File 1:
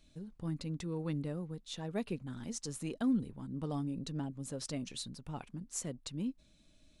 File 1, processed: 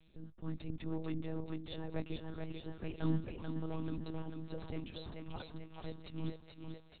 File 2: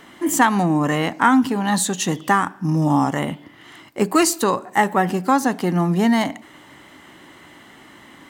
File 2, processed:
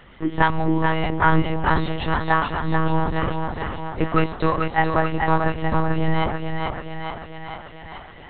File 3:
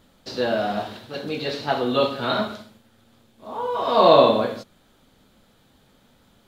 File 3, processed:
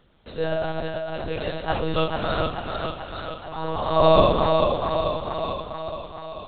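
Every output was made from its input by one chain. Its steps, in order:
on a send: thinning echo 0.436 s, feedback 67%, high-pass 240 Hz, level -4 dB; on the sum: monotone LPC vocoder at 8 kHz 160 Hz; gain -2 dB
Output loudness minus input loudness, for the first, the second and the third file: -4.0, -3.5, -3.0 LU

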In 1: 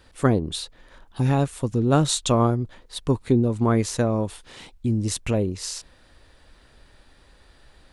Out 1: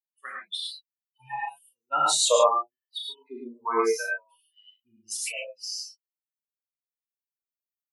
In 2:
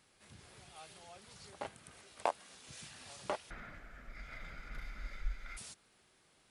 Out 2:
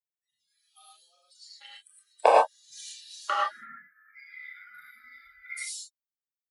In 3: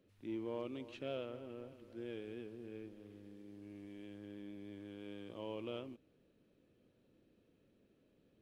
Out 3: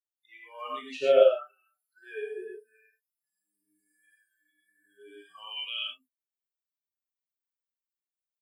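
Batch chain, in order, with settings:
per-bin expansion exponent 3; spectral noise reduction 26 dB; LFO high-pass sine 0.75 Hz 420–2900 Hz; early reflections 27 ms -6 dB, 38 ms -8.5 dB; non-linear reverb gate 0.13 s rising, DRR -2.5 dB; match loudness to -27 LUFS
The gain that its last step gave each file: +1.0, +12.0, +15.5 dB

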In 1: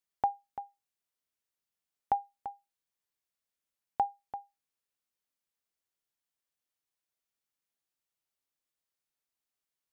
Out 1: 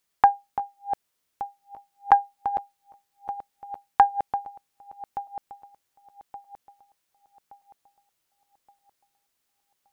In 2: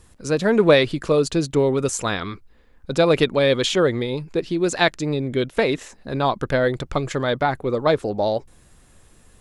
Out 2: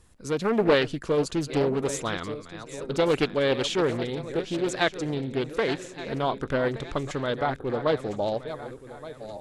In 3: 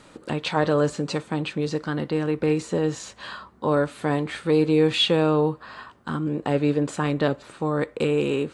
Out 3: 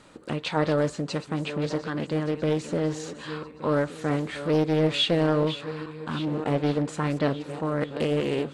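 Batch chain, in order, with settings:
regenerating reverse delay 0.586 s, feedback 59%, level -12 dB; Doppler distortion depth 0.4 ms; match loudness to -27 LUFS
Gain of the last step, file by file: +12.5, -6.5, -3.0 dB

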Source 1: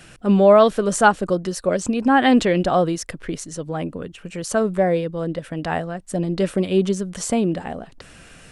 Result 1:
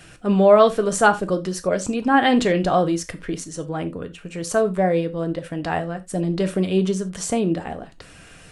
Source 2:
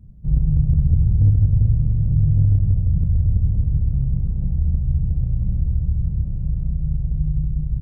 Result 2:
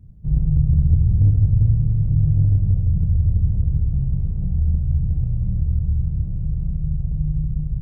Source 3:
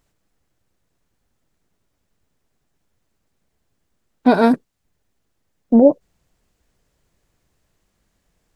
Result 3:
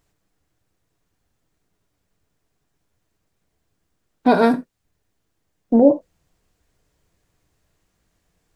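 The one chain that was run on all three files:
non-linear reverb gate 0.11 s falling, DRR 8 dB; gain -1 dB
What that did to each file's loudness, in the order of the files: -1.0, 0.0, -2.0 LU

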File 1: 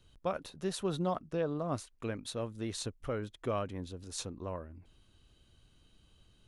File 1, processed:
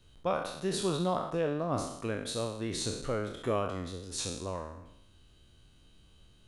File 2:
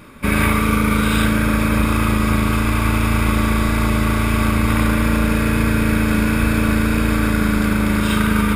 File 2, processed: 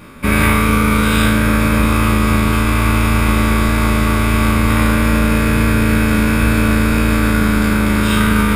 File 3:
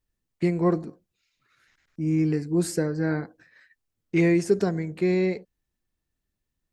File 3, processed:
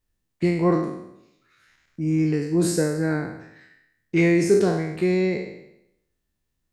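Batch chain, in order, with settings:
spectral trails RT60 0.80 s; gain +1.5 dB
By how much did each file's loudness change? +4.0, +3.5, +2.5 LU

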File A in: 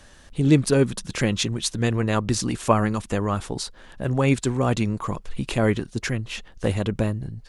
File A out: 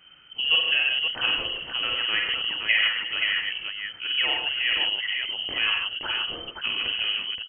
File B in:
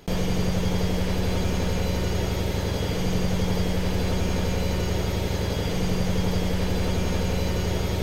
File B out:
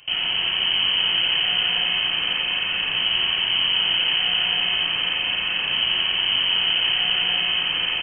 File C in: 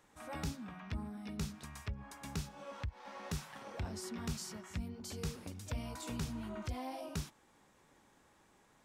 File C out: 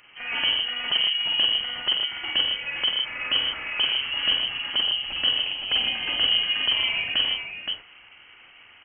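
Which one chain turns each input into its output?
dynamic EQ 1300 Hz, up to +7 dB, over -46 dBFS, Q 2.3; on a send: tapped delay 48/53/93/124/155/521 ms -5/-7/-9/-8/-6.5/-5 dB; on the sum: inverted band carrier 3100 Hz; normalise peaks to -9 dBFS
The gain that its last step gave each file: -7.0, -1.0, +13.5 dB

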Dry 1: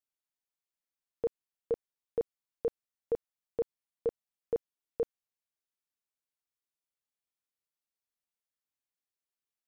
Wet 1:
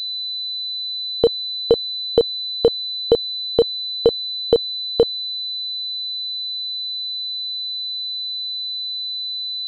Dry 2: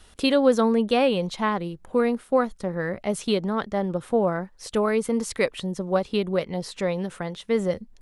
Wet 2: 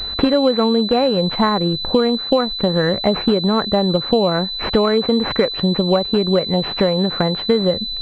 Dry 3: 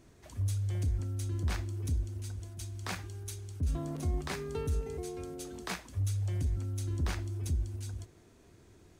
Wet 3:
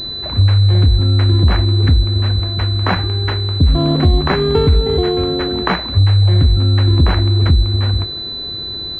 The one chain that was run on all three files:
compressor 6:1, threshold -32 dBFS; pulse-width modulation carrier 4000 Hz; normalise peaks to -2 dBFS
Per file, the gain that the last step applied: +21.5, +18.5, +24.0 dB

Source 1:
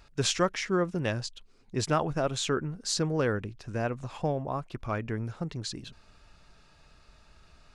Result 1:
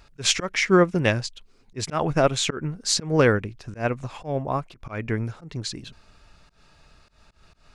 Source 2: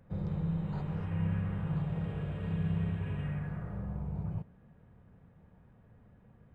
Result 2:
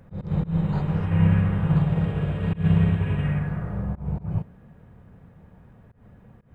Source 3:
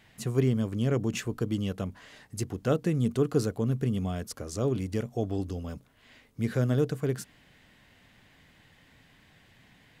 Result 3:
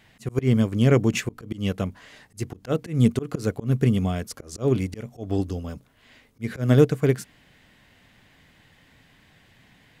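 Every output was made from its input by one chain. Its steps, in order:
dynamic EQ 2200 Hz, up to +6 dB, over -56 dBFS, Q 3.5; auto swell 0.136 s; upward expander 1.5:1, over -38 dBFS; match loudness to -24 LUFS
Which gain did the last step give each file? +10.5, +14.0, +10.5 dB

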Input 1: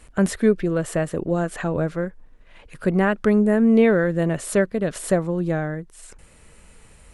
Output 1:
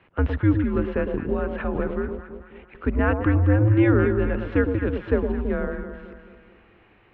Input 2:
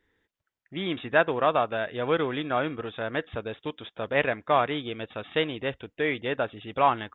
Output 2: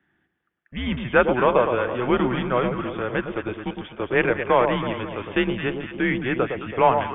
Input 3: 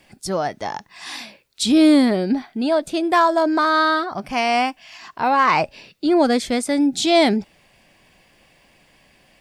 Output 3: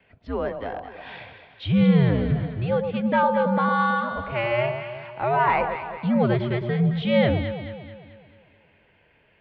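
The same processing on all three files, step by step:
mistuned SSB -120 Hz 170–3200 Hz; echo with dull and thin repeats by turns 0.109 s, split 1000 Hz, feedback 69%, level -5.5 dB; match loudness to -23 LUFS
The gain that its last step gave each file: -1.5, +4.0, -5.0 dB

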